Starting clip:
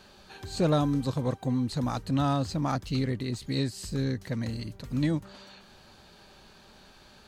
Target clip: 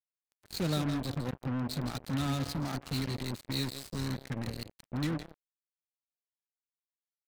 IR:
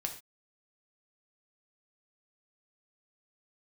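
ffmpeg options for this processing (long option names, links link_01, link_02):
-filter_complex "[0:a]equalizer=frequency=500:width_type=o:width=1:gain=-5,equalizer=frequency=1000:width_type=o:width=1:gain=-8,equalizer=frequency=2000:width_type=o:width=1:gain=3,equalizer=frequency=4000:width_type=o:width=1:gain=7,acrossover=split=210|2000[link_01][link_02][link_03];[link_03]aeval=exprs='sgn(val(0))*max(abs(val(0))-0.00631,0)':channel_layout=same[link_04];[link_01][link_02][link_04]amix=inputs=3:normalize=0,aecho=1:1:164:0.316,acrusher=bits=4:mix=0:aa=0.5,volume=-5dB"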